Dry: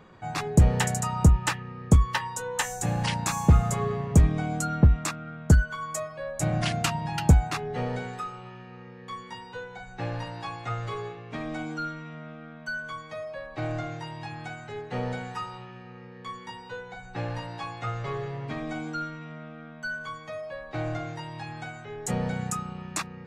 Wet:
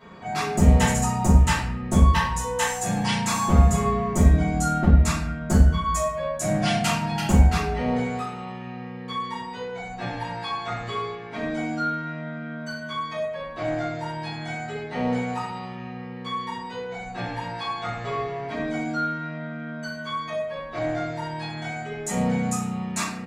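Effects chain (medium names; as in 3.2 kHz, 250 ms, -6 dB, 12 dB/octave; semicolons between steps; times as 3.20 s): high-pass 63 Hz; bass shelf 140 Hz -3 dB; comb 4.4 ms, depth 59%; in parallel at 0 dB: compression, threshold -38 dBFS, peak gain reduction 22.5 dB; on the sum: wavefolder -9 dBFS; simulated room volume 120 m³, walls mixed, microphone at 2.9 m; trim -9 dB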